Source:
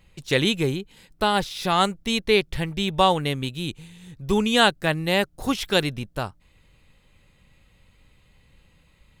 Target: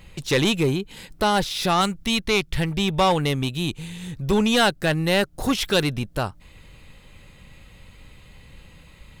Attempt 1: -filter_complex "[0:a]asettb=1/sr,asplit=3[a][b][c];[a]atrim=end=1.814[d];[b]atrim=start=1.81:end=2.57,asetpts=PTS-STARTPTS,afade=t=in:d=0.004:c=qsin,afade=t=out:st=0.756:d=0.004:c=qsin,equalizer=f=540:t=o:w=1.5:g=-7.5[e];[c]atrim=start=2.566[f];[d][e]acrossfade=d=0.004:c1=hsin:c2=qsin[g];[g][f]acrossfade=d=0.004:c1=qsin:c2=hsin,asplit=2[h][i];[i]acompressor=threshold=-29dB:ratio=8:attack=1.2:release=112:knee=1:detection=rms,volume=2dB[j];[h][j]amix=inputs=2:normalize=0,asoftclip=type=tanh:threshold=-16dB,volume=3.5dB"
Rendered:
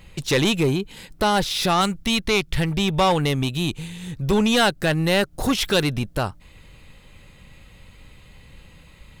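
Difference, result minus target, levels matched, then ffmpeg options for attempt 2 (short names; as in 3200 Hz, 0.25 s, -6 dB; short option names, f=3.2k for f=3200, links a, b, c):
compressor: peak gain reduction -9 dB
-filter_complex "[0:a]asettb=1/sr,asplit=3[a][b][c];[a]atrim=end=1.814[d];[b]atrim=start=1.81:end=2.57,asetpts=PTS-STARTPTS,afade=t=in:d=0.004:c=qsin,afade=t=out:st=0.756:d=0.004:c=qsin,equalizer=f=540:t=o:w=1.5:g=-7.5[e];[c]atrim=start=2.566[f];[d][e]acrossfade=d=0.004:c1=hsin:c2=qsin[g];[g][f]acrossfade=d=0.004:c1=qsin:c2=hsin,asplit=2[h][i];[i]acompressor=threshold=-39.5dB:ratio=8:attack=1.2:release=112:knee=1:detection=rms,volume=2dB[j];[h][j]amix=inputs=2:normalize=0,asoftclip=type=tanh:threshold=-16dB,volume=3.5dB"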